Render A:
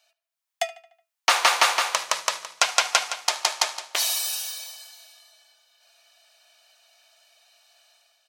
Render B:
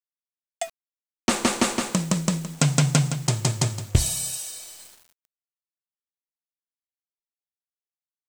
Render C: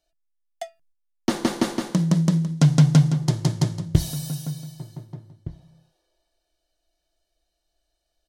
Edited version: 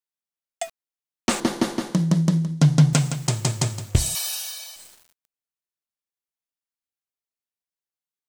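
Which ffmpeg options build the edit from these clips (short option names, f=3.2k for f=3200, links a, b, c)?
-filter_complex "[1:a]asplit=3[a][b][c];[a]atrim=end=1.402[d];[2:a]atrim=start=1.398:end=2.932[e];[b]atrim=start=2.928:end=4.152[f];[0:a]atrim=start=4.148:end=4.762[g];[c]atrim=start=4.758[h];[d][e]acrossfade=d=0.004:c1=hsin:c2=hsin[i];[i][f]acrossfade=d=0.004:c1=hsin:c2=hsin[j];[j][g]acrossfade=d=0.004:c1=hsin:c2=hsin[k];[k][h]acrossfade=d=0.004:c1=hsin:c2=hsin"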